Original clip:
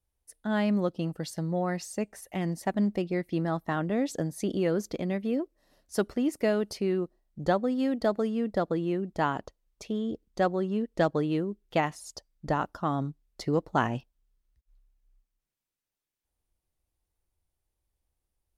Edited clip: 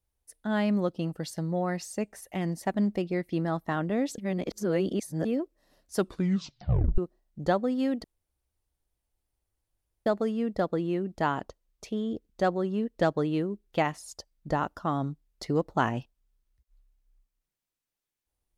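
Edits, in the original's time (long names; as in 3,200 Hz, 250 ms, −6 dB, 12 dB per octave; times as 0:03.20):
0:04.18–0:05.25: reverse
0:05.97: tape stop 1.01 s
0:08.04: splice in room tone 2.02 s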